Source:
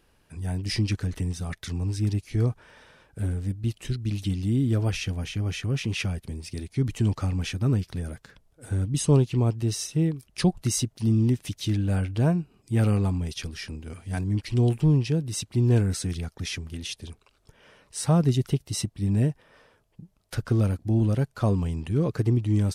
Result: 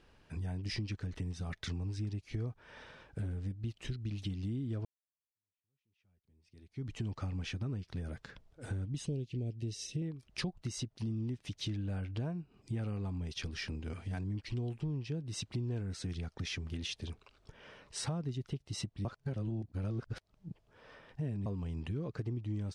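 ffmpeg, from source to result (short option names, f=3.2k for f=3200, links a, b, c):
-filter_complex "[0:a]asettb=1/sr,asplit=3[a][b][c];[a]atrim=end=9.064[d];[b]atrim=start=9.06:end=10.02,asetpts=PTS-STARTPTS,afade=t=in:d=0.004:c=qsin,afade=t=out:st=0.956:d=0.004:c=qsin,asuperstop=centerf=1100:order=4:qfactor=0.66[e];[c]atrim=start=10.016[f];[d][e]acrossfade=d=0.004:c1=hsin:c2=qsin[g];[g][f]acrossfade=d=0.004:c1=qsin:c2=hsin,asplit=4[h][i][j][k];[h]atrim=end=4.85,asetpts=PTS-STARTPTS,afade=t=out:st=4.846:d=0.004:c=hsin[l];[i]atrim=start=4.85:end=19.052,asetpts=PTS-STARTPTS,afade=t=in:d=2.28:c=exp[m];[j]atrim=start=19.048:end=21.462,asetpts=PTS-STARTPTS,areverse[n];[k]atrim=start=21.458[o];[l][m]concat=n=2:v=0:a=1[p];[p][n]acrossfade=d=0.004:c1=hsin:c2=hsin[q];[q][o]acrossfade=d=0.004:c1=hsin:c2=hsin,lowpass=5.4k,acompressor=threshold=-36dB:ratio=6"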